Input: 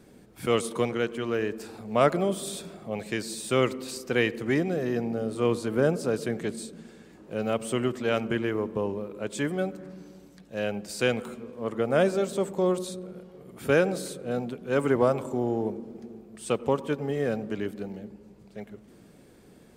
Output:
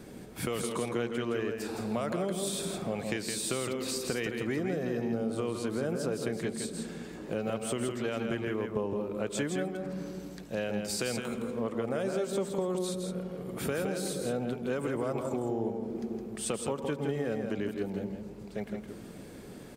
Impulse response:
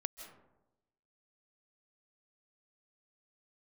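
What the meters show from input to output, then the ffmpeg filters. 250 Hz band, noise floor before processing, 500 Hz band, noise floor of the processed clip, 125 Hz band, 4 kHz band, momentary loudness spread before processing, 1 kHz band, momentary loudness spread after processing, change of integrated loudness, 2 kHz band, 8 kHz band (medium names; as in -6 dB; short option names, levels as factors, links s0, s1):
-3.5 dB, -54 dBFS, -6.0 dB, -46 dBFS, -4.0 dB, -2.0 dB, 18 LU, -6.5 dB, 7 LU, -5.5 dB, -6.5 dB, +2.0 dB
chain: -filter_complex "[0:a]acrossover=split=5200[s0][s1];[s0]alimiter=limit=0.119:level=0:latency=1[s2];[s2][s1]amix=inputs=2:normalize=0,acompressor=threshold=0.0126:ratio=4,aecho=1:1:164:0.531,volume=2.11"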